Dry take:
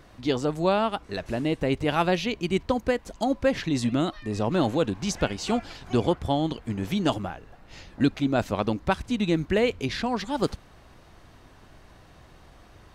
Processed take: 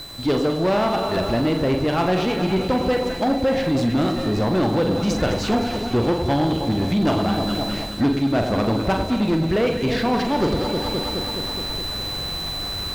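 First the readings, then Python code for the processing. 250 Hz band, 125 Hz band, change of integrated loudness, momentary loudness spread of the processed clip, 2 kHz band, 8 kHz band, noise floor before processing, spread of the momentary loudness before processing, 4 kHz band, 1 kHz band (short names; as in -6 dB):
+6.0 dB, +6.0 dB, +4.5 dB, 5 LU, +3.5 dB, +3.0 dB, -52 dBFS, 5 LU, +8.5 dB, +5.0 dB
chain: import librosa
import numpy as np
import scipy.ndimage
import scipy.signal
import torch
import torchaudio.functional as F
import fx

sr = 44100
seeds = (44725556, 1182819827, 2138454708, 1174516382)

p1 = fx.reverse_delay(x, sr, ms=188, wet_db=-13.5)
p2 = fx.quant_dither(p1, sr, seeds[0], bits=6, dither='triangular')
p3 = p1 + (p2 * librosa.db_to_amplitude(-12.0))
p4 = p3 + 10.0 ** (-32.0 / 20.0) * np.sin(2.0 * np.pi * 4000.0 * np.arange(len(p3)) / sr)
p5 = fx.high_shelf(p4, sr, hz=8600.0, db=-4.0)
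p6 = fx.echo_alternate(p5, sr, ms=105, hz=1100.0, feedback_pct=82, wet_db=-10.0)
p7 = fx.rider(p6, sr, range_db=10, speed_s=0.5)
p8 = fx.high_shelf(p7, sr, hz=3000.0, db=-9.0)
p9 = fx.room_flutter(p8, sr, wall_m=7.4, rt60_s=0.3)
p10 = fx.leveller(p9, sr, passes=3)
y = p10 * librosa.db_to_amplitude(-5.5)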